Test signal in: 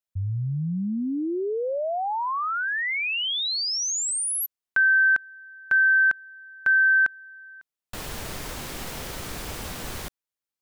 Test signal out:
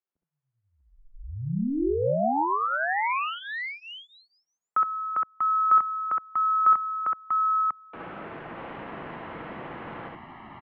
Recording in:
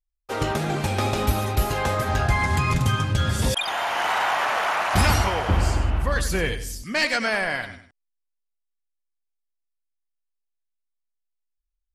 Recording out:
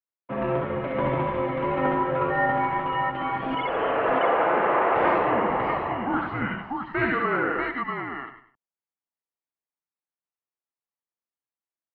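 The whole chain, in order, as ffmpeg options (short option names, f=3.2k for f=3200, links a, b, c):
-filter_complex "[0:a]acrossover=split=310 2100:gain=0.0891 1 0.141[a][b][c];[a][b][c]amix=inputs=3:normalize=0,highpass=f=390:t=q:w=0.5412,highpass=f=390:t=q:w=1.307,lowpass=f=3.3k:t=q:w=0.5176,lowpass=f=3.3k:t=q:w=0.7071,lowpass=f=3.3k:t=q:w=1.932,afreqshift=-260,aecho=1:1:61|67|641|642:0.422|0.668|0.531|0.562"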